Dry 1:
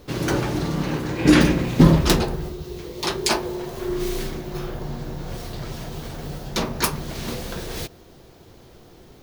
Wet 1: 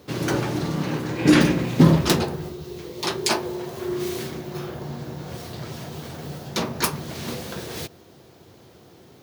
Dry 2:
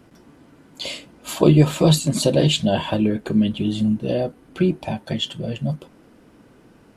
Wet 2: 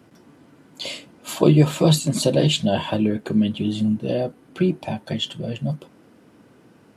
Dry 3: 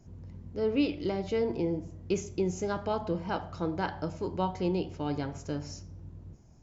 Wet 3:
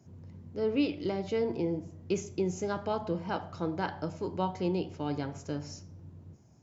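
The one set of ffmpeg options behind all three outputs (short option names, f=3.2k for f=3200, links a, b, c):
-af "highpass=f=84:w=0.5412,highpass=f=84:w=1.3066,volume=-1dB"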